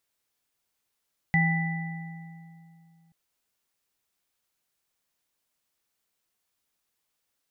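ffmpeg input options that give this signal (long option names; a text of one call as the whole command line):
ffmpeg -f lavfi -i "aevalsrc='0.0944*pow(10,-3*t/2.71)*sin(2*PI*166*t)+0.0335*pow(10,-3*t/2.29)*sin(2*PI*797*t)+0.0841*pow(10,-3*t/1.74)*sin(2*PI*1980*t)':duration=1.78:sample_rate=44100" out.wav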